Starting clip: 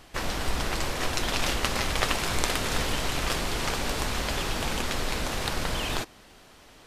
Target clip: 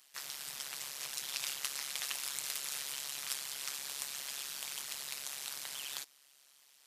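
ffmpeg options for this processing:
-af "tremolo=f=140:d=0.974,aderivative"

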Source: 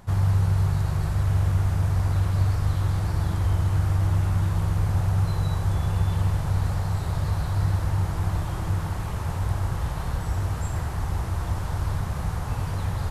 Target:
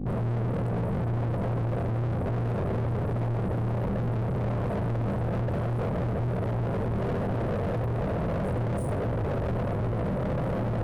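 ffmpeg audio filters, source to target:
-filter_complex "[0:a]afftfilt=real='re*(1-between(b*sr/4096,590,6700))':imag='im*(1-between(b*sr/4096,590,6700))':win_size=4096:overlap=0.75,anlmdn=0.398,lowpass=f=11000:w=0.5412,lowpass=f=11000:w=1.3066,adynamicequalizer=threshold=0.002:dfrequency=420:dqfactor=2.9:tfrequency=420:tqfactor=2.9:attack=5:release=100:ratio=0.375:range=3:mode=boostabove:tftype=bell,alimiter=limit=0.0794:level=0:latency=1:release=80,areverse,acompressor=mode=upward:threshold=0.0316:ratio=2.5,areverse,asetrate=53361,aresample=44100,flanger=delay=17.5:depth=7.9:speed=1.2,aeval=exprs='val(0)+0.00891*(sin(2*PI*50*n/s)+sin(2*PI*2*50*n/s)/2+sin(2*PI*3*50*n/s)/3+sin(2*PI*4*50*n/s)/4+sin(2*PI*5*50*n/s)/5)':c=same,asplit=2[s0][s1];[s1]highpass=f=720:p=1,volume=89.1,asoftclip=type=tanh:threshold=0.0944[s2];[s0][s2]amix=inputs=2:normalize=0,lowpass=f=1200:p=1,volume=0.501,aeval=exprs='clip(val(0),-1,0.0422)':c=same"

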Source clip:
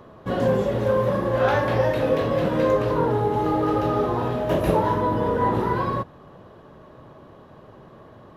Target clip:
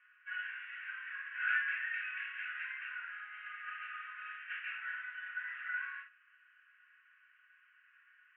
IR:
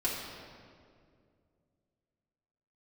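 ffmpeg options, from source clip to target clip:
-filter_complex "[0:a]asuperpass=centerf=2000:order=12:qfactor=1.4[s0];[1:a]atrim=start_sample=2205,atrim=end_sample=3087[s1];[s0][s1]afir=irnorm=-1:irlink=0,volume=0.473"

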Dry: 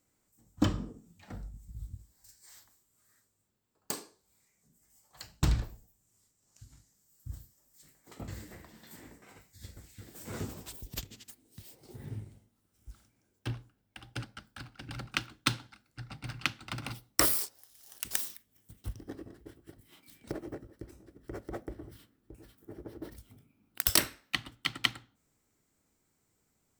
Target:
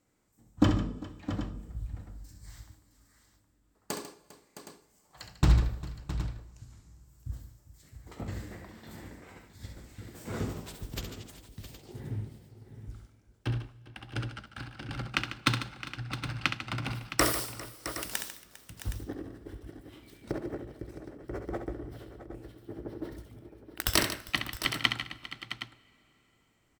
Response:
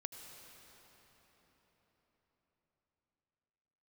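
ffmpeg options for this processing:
-filter_complex "[0:a]aemphasis=mode=reproduction:type=cd,aecho=1:1:67|146|401|664|767:0.398|0.237|0.119|0.237|0.2,asplit=2[s0][s1];[1:a]atrim=start_sample=2205,adelay=17[s2];[s1][s2]afir=irnorm=-1:irlink=0,volume=0.168[s3];[s0][s3]amix=inputs=2:normalize=0,volume=1.5"

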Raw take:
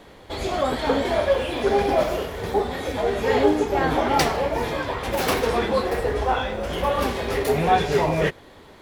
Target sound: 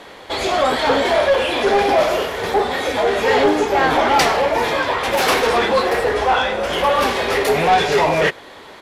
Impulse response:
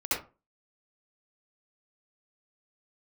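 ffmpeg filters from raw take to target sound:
-filter_complex "[0:a]asplit=2[s0][s1];[s1]highpass=f=720:p=1,volume=7.08,asoftclip=type=tanh:threshold=0.531[s2];[s0][s2]amix=inputs=2:normalize=0,lowpass=f=6400:p=1,volume=0.501,aresample=32000,aresample=44100"

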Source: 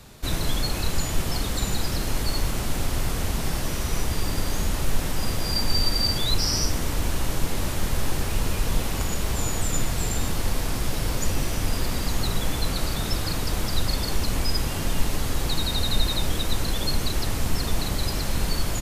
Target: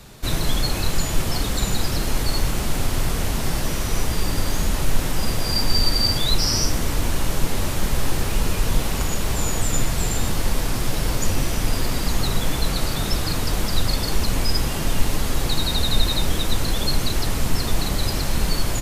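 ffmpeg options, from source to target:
-af "flanger=delay=4.4:depth=4.8:regen=-62:speed=1.9:shape=triangular,volume=2.37"

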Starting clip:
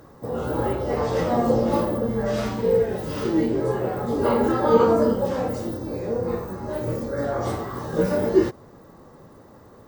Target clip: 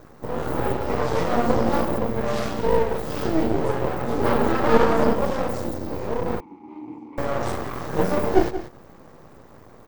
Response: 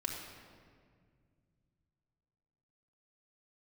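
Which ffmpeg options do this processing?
-filter_complex "[0:a]aecho=1:1:180:0.251,aeval=exprs='max(val(0),0)':c=same,asettb=1/sr,asplit=3[s0][s1][s2];[s0]atrim=end=6.404[s3];[s1]atrim=start=6.4:end=7.18,asetpts=PTS-STARTPTS,afade=t=in:d=0.004:c=qsin,afade=t=out:st=0.776:d=0.004:c=qsin,asplit=3[s4][s5][s6];[s4]bandpass=f=300:t=q:w=8,volume=1[s7];[s5]bandpass=f=870:t=q:w=8,volume=0.501[s8];[s6]bandpass=f=2240:t=q:w=8,volume=0.355[s9];[s7][s8][s9]amix=inputs=3:normalize=0[s10];[s2]atrim=start=7.176[s11];[s3][s10]acrossfade=d=0.004:c1=hsin:c2=qsin[s12];[s12][s11]acrossfade=d=0.004:c1=qsin:c2=hsin,volume=1.58"

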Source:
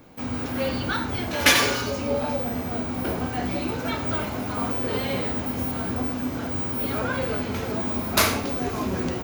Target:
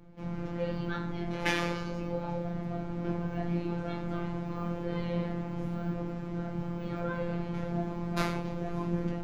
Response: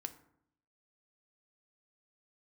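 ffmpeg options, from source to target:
-filter_complex "[0:a]aemphasis=mode=reproduction:type=riaa,flanger=delay=20:depth=6.9:speed=0.99,acrossover=split=160[s0][s1];[s0]volume=7.94,asoftclip=hard,volume=0.126[s2];[s2][s1]amix=inputs=2:normalize=0,afftfilt=real='hypot(re,im)*cos(PI*b)':imag='0':win_size=1024:overlap=0.75,volume=0.631"

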